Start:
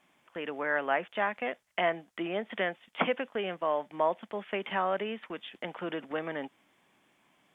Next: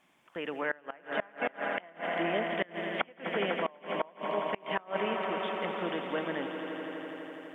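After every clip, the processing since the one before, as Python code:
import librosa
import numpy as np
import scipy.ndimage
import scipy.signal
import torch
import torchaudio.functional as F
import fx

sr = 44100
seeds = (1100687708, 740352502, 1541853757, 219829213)

y = fx.echo_swell(x, sr, ms=83, loudest=5, wet_db=-10.5)
y = fx.gate_flip(y, sr, shuts_db=-18.0, range_db=-26)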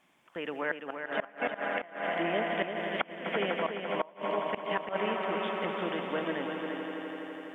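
y = x + 10.0 ** (-7.0 / 20.0) * np.pad(x, (int(342 * sr / 1000.0), 0))[:len(x)]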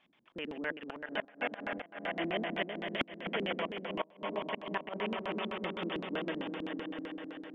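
y = fx.filter_lfo_lowpass(x, sr, shape='square', hz=7.8, low_hz=280.0, high_hz=3400.0, q=2.1)
y = y * librosa.db_to_amplitude(-4.5)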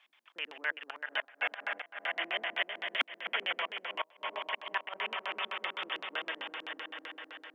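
y = scipy.signal.sosfilt(scipy.signal.butter(2, 1100.0, 'highpass', fs=sr, output='sos'), x)
y = y * librosa.db_to_amplitude(5.5)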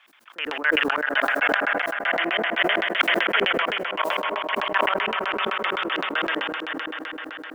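y = fx.peak_eq(x, sr, hz=1400.0, db=7.5, octaves=0.65)
y = fx.sustainer(y, sr, db_per_s=22.0)
y = y * librosa.db_to_amplitude(7.0)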